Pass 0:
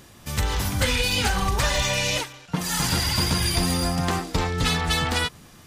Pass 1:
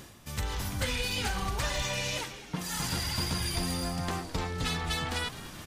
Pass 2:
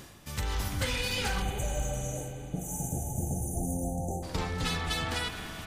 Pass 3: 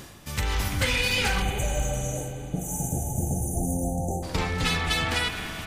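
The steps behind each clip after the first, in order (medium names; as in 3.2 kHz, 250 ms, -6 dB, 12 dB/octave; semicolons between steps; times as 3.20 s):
reverse; upward compressor, threshold -24 dBFS; reverse; frequency-shifting echo 210 ms, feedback 62%, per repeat -90 Hz, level -15.5 dB; trim -9 dB
spectral selection erased 1.42–4.23 s, 870–5900 Hz; spring tank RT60 3.8 s, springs 38/58 ms, chirp 45 ms, DRR 6 dB
dynamic bell 2.3 kHz, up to +5 dB, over -50 dBFS, Q 2; trim +5 dB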